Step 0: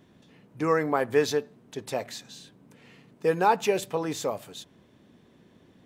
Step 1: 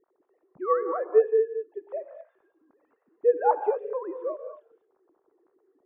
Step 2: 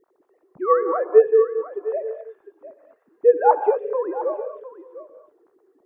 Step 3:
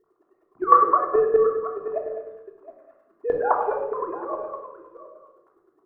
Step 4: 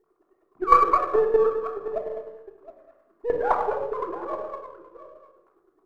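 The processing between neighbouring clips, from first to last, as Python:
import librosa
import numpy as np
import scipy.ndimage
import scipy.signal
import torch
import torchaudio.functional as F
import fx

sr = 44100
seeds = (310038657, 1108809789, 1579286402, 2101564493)

y1 = fx.sine_speech(x, sr)
y1 = scipy.signal.sosfilt(scipy.signal.butter(4, 1300.0, 'lowpass', fs=sr, output='sos'), y1)
y1 = fx.rev_gated(y1, sr, seeds[0], gate_ms=250, shape='rising', drr_db=7.5)
y2 = y1 + 10.0 ** (-14.5 / 20.0) * np.pad(y1, (int(705 * sr / 1000.0), 0))[:len(y1)]
y2 = y2 * 10.0 ** (6.5 / 20.0)
y3 = fx.peak_eq(y2, sr, hz=1200.0, db=12.5, octaves=0.57)
y3 = fx.chopper(y3, sr, hz=9.7, depth_pct=65, duty_pct=20)
y3 = fx.room_shoebox(y3, sr, seeds[1], volume_m3=1900.0, walls='furnished', distance_m=3.2)
y3 = y3 * 10.0 ** (-3.0 / 20.0)
y4 = np.where(y3 < 0.0, 10.0 ** (-3.0 / 20.0) * y3, y3)
y4 = fx.peak_eq(y4, sr, hz=89.0, db=-4.5, octaves=0.44)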